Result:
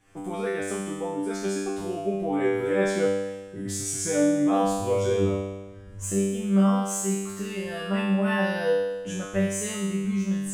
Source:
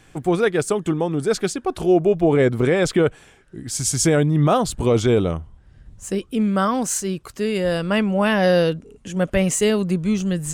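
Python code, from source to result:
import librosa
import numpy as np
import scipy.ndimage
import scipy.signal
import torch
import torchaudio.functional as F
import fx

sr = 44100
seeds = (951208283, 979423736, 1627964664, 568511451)

y = fx.recorder_agc(x, sr, target_db=-13.5, rise_db_per_s=23.0, max_gain_db=30)
y = fx.peak_eq(y, sr, hz=4300.0, db=-6.0, octaves=0.54)
y = fx.comb_fb(y, sr, f0_hz=98.0, decay_s=1.2, harmonics='all', damping=0.0, mix_pct=100)
y = F.gain(torch.from_numpy(y), 9.0).numpy()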